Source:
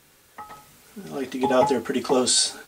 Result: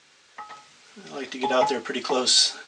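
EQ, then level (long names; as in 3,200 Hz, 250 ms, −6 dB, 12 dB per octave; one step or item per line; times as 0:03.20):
high-pass filter 70 Hz
Bessel low-pass filter 4,200 Hz, order 8
spectral tilt +3.5 dB per octave
0.0 dB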